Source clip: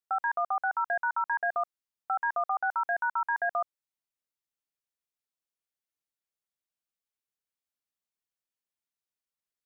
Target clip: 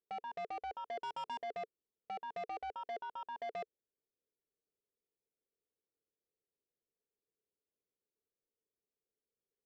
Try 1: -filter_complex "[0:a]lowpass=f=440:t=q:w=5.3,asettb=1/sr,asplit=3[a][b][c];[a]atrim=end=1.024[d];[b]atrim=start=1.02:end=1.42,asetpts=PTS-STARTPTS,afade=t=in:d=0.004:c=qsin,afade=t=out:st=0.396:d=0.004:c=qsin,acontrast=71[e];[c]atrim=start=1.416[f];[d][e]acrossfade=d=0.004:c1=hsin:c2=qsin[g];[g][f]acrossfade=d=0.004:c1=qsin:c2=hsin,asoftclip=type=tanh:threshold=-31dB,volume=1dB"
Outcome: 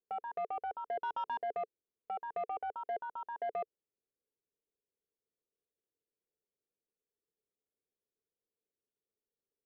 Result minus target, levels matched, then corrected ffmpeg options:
soft clip: distortion -10 dB
-filter_complex "[0:a]lowpass=f=440:t=q:w=5.3,asettb=1/sr,asplit=3[a][b][c];[a]atrim=end=1.024[d];[b]atrim=start=1.02:end=1.42,asetpts=PTS-STARTPTS,afade=t=in:d=0.004:c=qsin,afade=t=out:st=0.396:d=0.004:c=qsin,acontrast=71[e];[c]atrim=start=1.416[f];[d][e]acrossfade=d=0.004:c1=hsin:c2=qsin[g];[g][f]acrossfade=d=0.004:c1=qsin:c2=hsin,asoftclip=type=tanh:threshold=-39.5dB,volume=1dB"

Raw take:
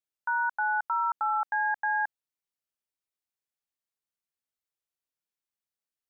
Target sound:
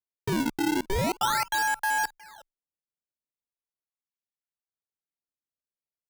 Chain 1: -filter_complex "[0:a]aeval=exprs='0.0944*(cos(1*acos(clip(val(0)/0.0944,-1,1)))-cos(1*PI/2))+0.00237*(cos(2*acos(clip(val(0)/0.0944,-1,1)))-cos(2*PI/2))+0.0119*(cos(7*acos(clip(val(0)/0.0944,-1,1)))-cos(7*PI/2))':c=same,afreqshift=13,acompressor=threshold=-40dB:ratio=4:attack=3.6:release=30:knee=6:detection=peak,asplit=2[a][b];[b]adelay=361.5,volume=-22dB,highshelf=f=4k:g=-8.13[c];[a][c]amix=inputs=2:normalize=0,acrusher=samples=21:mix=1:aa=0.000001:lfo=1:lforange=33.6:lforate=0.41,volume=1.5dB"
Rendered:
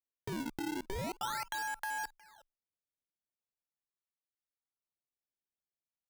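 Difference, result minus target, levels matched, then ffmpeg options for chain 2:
compressor: peak gain reduction +12 dB
-filter_complex "[0:a]aeval=exprs='0.0944*(cos(1*acos(clip(val(0)/0.0944,-1,1)))-cos(1*PI/2))+0.00237*(cos(2*acos(clip(val(0)/0.0944,-1,1)))-cos(2*PI/2))+0.0119*(cos(7*acos(clip(val(0)/0.0944,-1,1)))-cos(7*PI/2))':c=same,afreqshift=13,asplit=2[a][b];[b]adelay=361.5,volume=-22dB,highshelf=f=4k:g=-8.13[c];[a][c]amix=inputs=2:normalize=0,acrusher=samples=21:mix=1:aa=0.000001:lfo=1:lforange=33.6:lforate=0.41,volume=1.5dB"

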